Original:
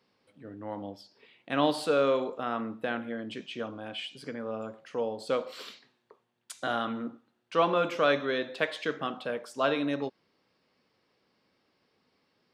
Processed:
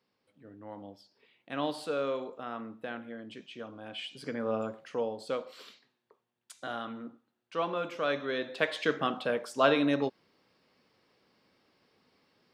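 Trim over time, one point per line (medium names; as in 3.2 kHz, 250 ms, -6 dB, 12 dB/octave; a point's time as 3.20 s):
3.65 s -7 dB
4.53 s +4.5 dB
5.55 s -7 dB
7.98 s -7 dB
8.89 s +3 dB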